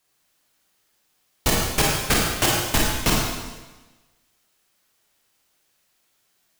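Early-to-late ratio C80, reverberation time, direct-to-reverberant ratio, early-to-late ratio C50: 2.0 dB, 1.2 s, −3.5 dB, −0.5 dB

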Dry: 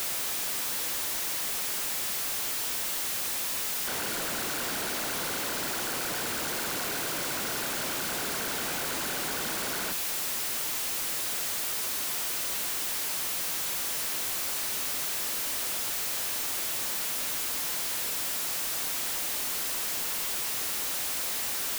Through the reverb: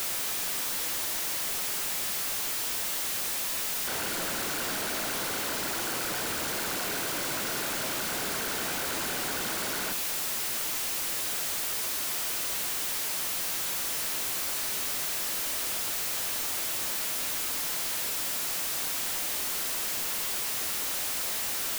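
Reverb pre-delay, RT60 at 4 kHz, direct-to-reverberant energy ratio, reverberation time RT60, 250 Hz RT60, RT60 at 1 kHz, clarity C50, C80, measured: 9 ms, 0.35 s, 10.0 dB, 0.65 s, 0.95 s, 0.50 s, 16.0 dB, 19.5 dB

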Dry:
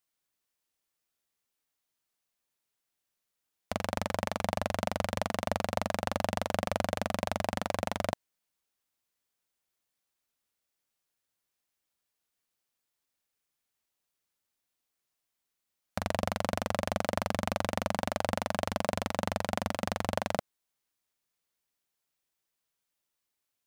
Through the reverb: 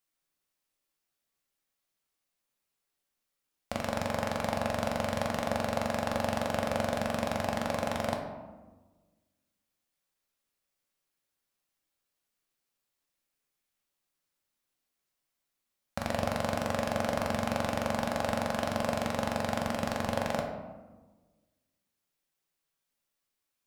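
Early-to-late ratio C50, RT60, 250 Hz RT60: 5.5 dB, 1.3 s, 1.7 s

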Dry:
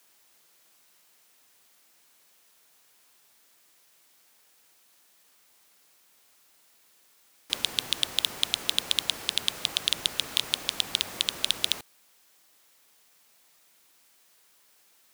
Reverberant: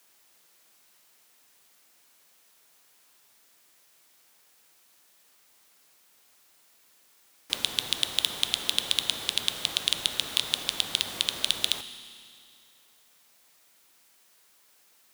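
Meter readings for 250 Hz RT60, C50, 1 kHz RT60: 2.4 s, 11.5 dB, 2.4 s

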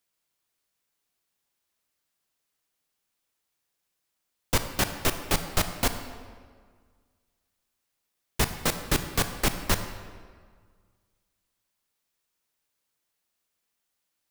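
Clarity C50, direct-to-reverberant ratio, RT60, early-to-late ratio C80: 9.0 dB, 8.0 dB, 1.7 s, 10.0 dB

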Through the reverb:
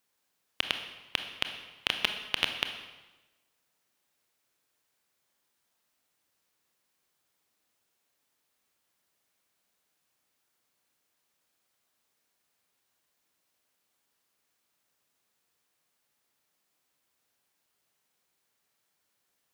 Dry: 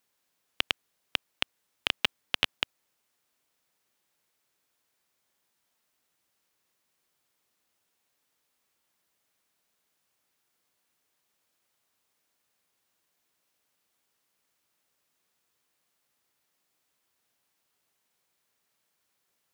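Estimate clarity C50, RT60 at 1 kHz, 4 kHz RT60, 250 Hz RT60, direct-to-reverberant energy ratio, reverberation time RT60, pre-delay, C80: 7.5 dB, 1.1 s, 1.0 s, 1.2 s, 6.0 dB, 1.1 s, 24 ms, 9.5 dB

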